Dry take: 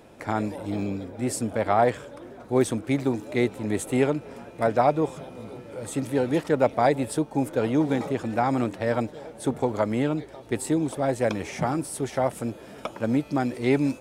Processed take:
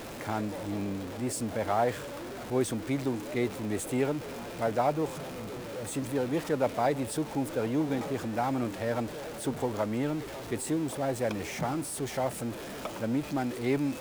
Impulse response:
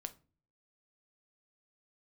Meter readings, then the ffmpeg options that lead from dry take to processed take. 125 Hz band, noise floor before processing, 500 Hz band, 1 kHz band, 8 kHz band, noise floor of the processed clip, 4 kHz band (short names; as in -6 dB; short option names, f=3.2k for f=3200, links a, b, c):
-5.5 dB, -45 dBFS, -6.0 dB, -6.0 dB, -2.0 dB, -41 dBFS, -1.5 dB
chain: -af "aeval=exprs='val(0)+0.5*0.0355*sgn(val(0))':c=same,volume=-7.5dB"